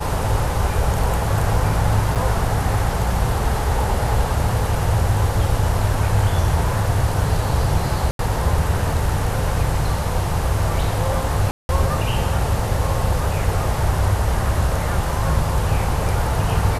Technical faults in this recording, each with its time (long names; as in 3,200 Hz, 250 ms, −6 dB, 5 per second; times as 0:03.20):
0:02.15–0:02.16: drop-out 7.3 ms
0:08.11–0:08.19: drop-out 82 ms
0:11.51–0:11.69: drop-out 181 ms